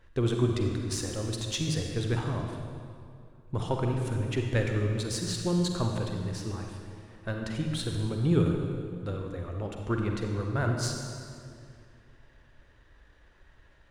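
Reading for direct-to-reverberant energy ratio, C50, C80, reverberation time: 2.0 dB, 2.5 dB, 4.0 dB, 2.3 s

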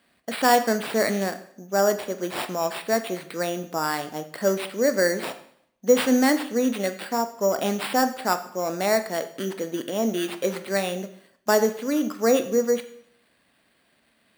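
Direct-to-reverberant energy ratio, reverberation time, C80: 8.5 dB, 0.65 s, 15.5 dB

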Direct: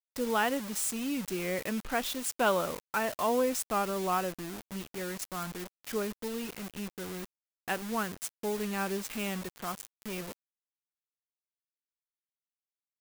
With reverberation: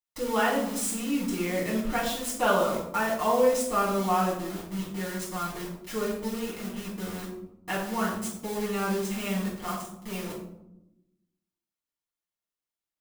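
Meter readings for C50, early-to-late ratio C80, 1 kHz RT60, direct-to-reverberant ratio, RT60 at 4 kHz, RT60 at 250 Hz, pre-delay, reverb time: 5.0 dB, 7.5 dB, 0.75 s, −6.5 dB, 0.45 s, 1.4 s, 4 ms, 0.90 s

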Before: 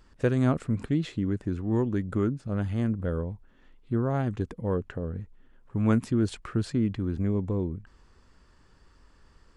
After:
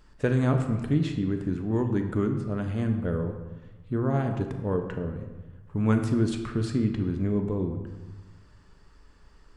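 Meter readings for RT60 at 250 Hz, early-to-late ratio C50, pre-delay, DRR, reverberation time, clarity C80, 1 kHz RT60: 1.4 s, 7.0 dB, 5 ms, 4.0 dB, 1.2 s, 9.0 dB, 1.3 s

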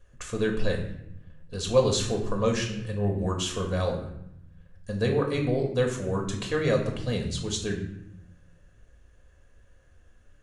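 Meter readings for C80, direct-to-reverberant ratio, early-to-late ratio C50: 9.5 dB, 0.5 dB, 6.5 dB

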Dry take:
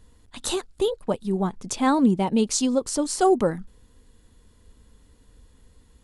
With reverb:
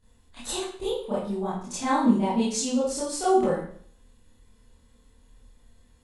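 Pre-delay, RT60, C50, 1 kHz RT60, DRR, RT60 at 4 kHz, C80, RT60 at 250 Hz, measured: 25 ms, 0.55 s, 2.0 dB, 0.50 s, −12.0 dB, 0.50 s, 6.5 dB, 0.55 s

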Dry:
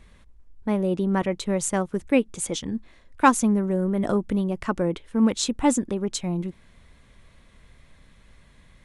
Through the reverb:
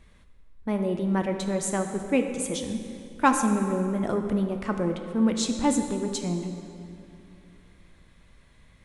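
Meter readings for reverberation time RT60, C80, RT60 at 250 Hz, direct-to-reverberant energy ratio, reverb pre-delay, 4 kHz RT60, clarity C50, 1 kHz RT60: 2.6 s, 7.5 dB, 3.0 s, 5.0 dB, 5 ms, 1.9 s, 6.5 dB, 2.5 s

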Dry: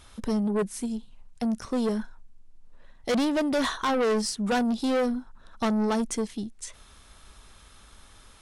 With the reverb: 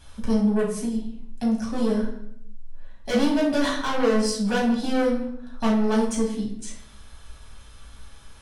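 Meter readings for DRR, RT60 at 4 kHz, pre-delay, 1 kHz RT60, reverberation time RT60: −4.0 dB, 0.55 s, 5 ms, 0.65 s, 0.75 s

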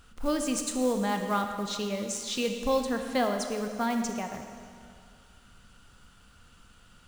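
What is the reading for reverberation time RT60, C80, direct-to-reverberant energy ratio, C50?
2.2 s, 7.0 dB, 4.5 dB, 6.0 dB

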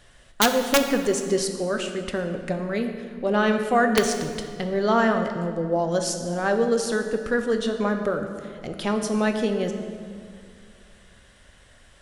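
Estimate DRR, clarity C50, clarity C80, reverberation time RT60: 5.0 dB, 7.0 dB, 8.0 dB, 2.2 s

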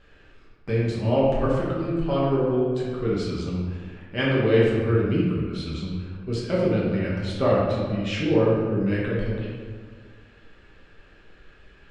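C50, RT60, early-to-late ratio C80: −0.5 dB, 1.8 s, 1.5 dB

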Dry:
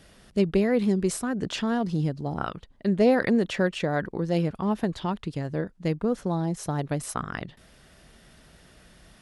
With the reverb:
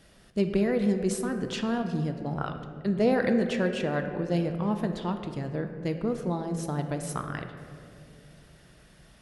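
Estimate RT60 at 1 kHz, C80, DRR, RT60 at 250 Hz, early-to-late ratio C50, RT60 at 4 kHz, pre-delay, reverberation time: 2.1 s, 8.5 dB, 6.0 dB, 3.1 s, 7.5 dB, 1.2 s, 3 ms, 2.7 s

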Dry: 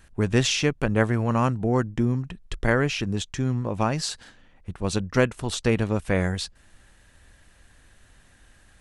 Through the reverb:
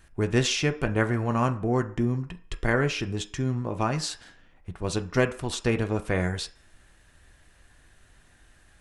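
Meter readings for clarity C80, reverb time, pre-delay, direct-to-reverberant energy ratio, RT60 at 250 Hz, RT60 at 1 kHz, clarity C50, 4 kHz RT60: 19.5 dB, 0.50 s, 3 ms, 6.0 dB, 0.40 s, 0.50 s, 15.5 dB, 0.55 s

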